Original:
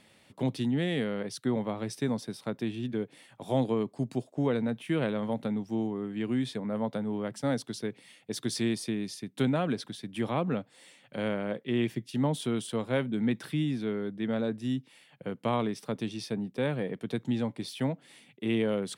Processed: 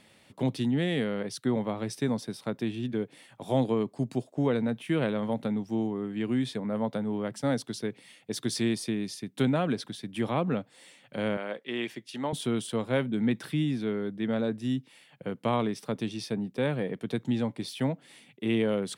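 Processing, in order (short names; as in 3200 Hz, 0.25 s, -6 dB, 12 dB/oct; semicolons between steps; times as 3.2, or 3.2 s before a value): 11.37–12.33 weighting filter A; gain +1.5 dB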